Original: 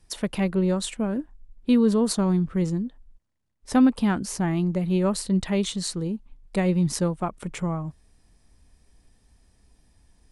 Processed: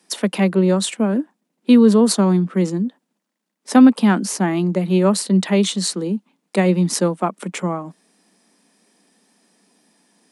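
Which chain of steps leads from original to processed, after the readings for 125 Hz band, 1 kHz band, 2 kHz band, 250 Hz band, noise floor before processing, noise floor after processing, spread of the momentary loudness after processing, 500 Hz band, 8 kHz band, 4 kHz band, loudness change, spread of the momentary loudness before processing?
+5.0 dB, +8.0 dB, +8.0 dB, +7.0 dB, -63 dBFS, -76 dBFS, 13 LU, +8.0 dB, +8.0 dB, +8.0 dB, +7.5 dB, 11 LU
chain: steep high-pass 180 Hz 72 dB/oct; gain +8 dB

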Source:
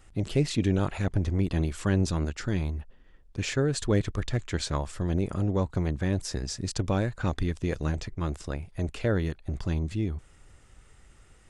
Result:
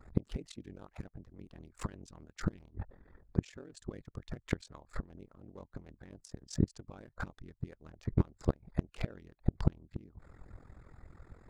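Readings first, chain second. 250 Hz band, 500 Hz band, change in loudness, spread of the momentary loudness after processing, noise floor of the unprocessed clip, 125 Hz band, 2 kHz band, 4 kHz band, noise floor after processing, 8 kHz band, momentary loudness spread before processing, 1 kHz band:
-10.5 dB, -14.0 dB, -10.0 dB, 20 LU, -56 dBFS, -10.5 dB, -13.5 dB, -17.0 dB, -73 dBFS, -16.0 dB, 7 LU, -12.5 dB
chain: Wiener smoothing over 15 samples; flipped gate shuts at -22 dBFS, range -28 dB; ring modulator 21 Hz; harmonic-percussive split harmonic -17 dB; gain +11 dB

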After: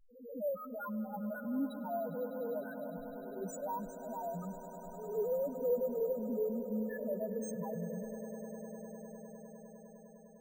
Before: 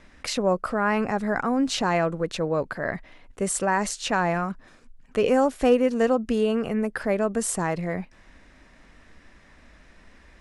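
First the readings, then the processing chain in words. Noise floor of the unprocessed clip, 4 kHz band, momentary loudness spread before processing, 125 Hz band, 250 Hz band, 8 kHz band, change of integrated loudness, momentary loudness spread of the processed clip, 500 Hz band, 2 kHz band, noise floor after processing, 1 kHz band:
-54 dBFS, under -30 dB, 10 LU, -15.0 dB, -13.5 dB, -22.0 dB, -14.0 dB, 15 LU, -11.5 dB, -23.0 dB, -56 dBFS, -17.0 dB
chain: spectral swells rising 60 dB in 0.74 s; gate with hold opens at -35 dBFS; loudest bins only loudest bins 1; swelling echo 0.101 s, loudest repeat 8, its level -17 dB; careless resampling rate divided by 3×, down none, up hold; gain -7.5 dB

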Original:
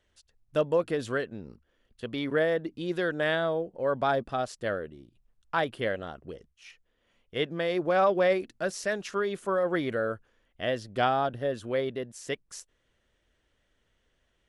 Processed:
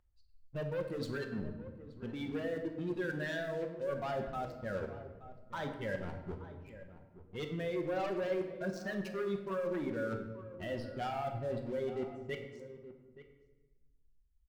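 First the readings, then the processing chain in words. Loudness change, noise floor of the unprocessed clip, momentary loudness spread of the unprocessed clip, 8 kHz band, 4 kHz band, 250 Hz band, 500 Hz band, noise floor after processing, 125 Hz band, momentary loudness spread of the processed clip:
-9.5 dB, -73 dBFS, 12 LU, under -10 dB, -12.0 dB, -5.0 dB, -9.5 dB, -67 dBFS, -3.0 dB, 14 LU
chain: per-bin expansion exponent 2; low-pass opened by the level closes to 1100 Hz, open at -25.5 dBFS; dynamic EQ 2700 Hz, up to -5 dB, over -51 dBFS, Q 2.1; in parallel at -2.5 dB: upward compressor, threshold -34 dBFS; on the sum: sample leveller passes 3; limiter -19.5 dBFS, peak gain reduction 9 dB; reverse; compressor 6:1, threshold -35 dBFS, peak gain reduction 12.5 dB; reverse; outdoor echo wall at 150 m, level -14 dB; shoebox room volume 710 m³, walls mixed, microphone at 0.94 m; gain -2.5 dB

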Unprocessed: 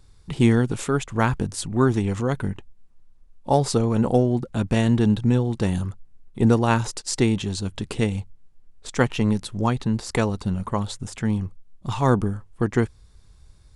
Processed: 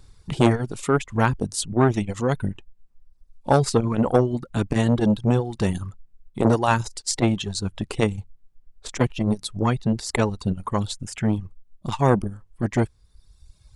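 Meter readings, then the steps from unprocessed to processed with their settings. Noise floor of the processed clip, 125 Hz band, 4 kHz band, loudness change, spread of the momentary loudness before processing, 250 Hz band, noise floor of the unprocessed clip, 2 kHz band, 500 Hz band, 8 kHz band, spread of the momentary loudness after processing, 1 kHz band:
-58 dBFS, -1.0 dB, +1.0 dB, 0.0 dB, 11 LU, -1.0 dB, -52 dBFS, 0.0 dB, +1.0 dB, +1.5 dB, 12 LU, +1.5 dB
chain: reverb removal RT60 1.2 s; core saturation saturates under 770 Hz; gain +4 dB

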